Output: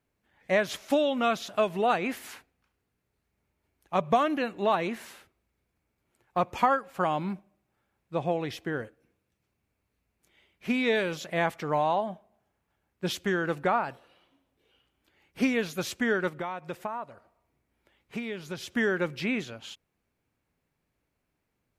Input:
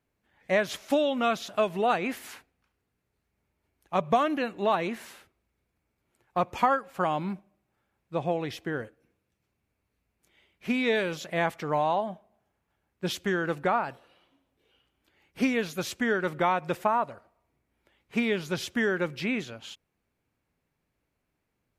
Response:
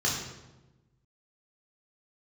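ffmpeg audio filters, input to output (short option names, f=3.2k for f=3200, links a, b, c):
-filter_complex "[0:a]asplit=3[a][b][c];[a]afade=t=out:st=16.28:d=0.02[d];[b]acompressor=threshold=-36dB:ratio=2.5,afade=t=in:st=16.28:d=0.02,afade=t=out:st=18.71:d=0.02[e];[c]afade=t=in:st=18.71:d=0.02[f];[d][e][f]amix=inputs=3:normalize=0"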